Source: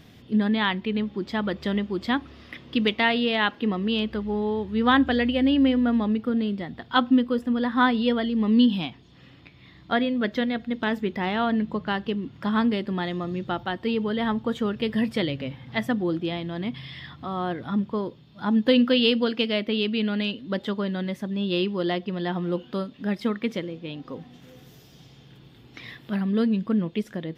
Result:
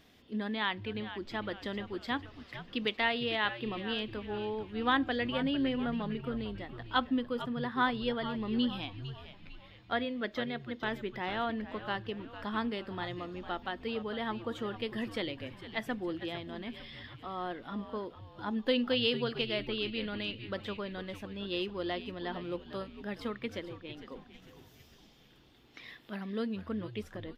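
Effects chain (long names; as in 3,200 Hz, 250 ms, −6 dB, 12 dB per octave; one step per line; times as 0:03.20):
parametric band 130 Hz −12.5 dB 1.5 octaves
echo with shifted repeats 452 ms, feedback 46%, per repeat −110 Hz, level −12 dB
level −7.5 dB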